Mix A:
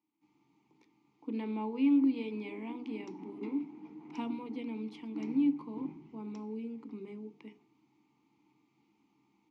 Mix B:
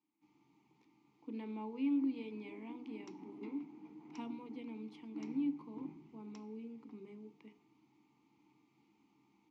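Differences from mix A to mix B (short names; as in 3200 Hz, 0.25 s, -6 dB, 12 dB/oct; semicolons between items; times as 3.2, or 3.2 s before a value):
speech -7.5 dB; second sound -5.0 dB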